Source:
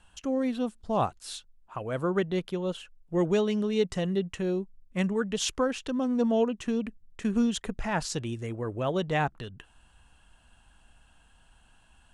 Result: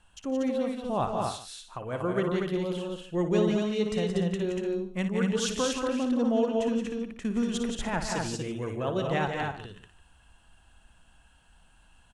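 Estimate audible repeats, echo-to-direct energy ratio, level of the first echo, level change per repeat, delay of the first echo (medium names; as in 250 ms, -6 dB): 5, 0.0 dB, -10.0 dB, no regular repeats, 57 ms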